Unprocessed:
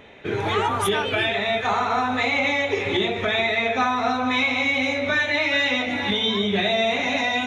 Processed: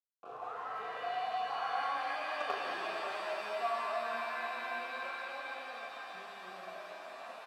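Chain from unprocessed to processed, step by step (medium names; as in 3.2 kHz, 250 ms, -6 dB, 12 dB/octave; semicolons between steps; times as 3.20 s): Doppler pass-by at 2.53 s, 31 m/s, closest 5.3 m; in parallel at +2 dB: compression, threshold -44 dBFS, peak gain reduction 22.5 dB; on the sum: doubling 38 ms -4 dB; companded quantiser 2-bit; high-pass 71 Hz; vibrato 7.4 Hz 13 cents; vowel filter a; resonant high shelf 1.7 kHz -7 dB, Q 3; pitch-shifted reverb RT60 3.8 s, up +7 st, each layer -2 dB, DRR 3 dB; trim -4.5 dB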